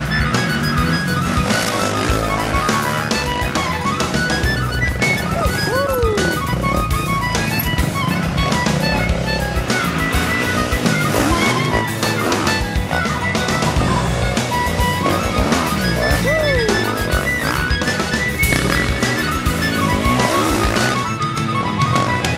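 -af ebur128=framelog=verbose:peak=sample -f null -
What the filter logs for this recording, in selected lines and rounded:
Integrated loudness:
  I:         -17.2 LUFS
  Threshold: -27.2 LUFS
Loudness range:
  LRA:         1.2 LU
  Threshold: -37.2 LUFS
  LRA low:   -17.8 LUFS
  LRA high:  -16.5 LUFS
Sample peak:
  Peak:       -2.2 dBFS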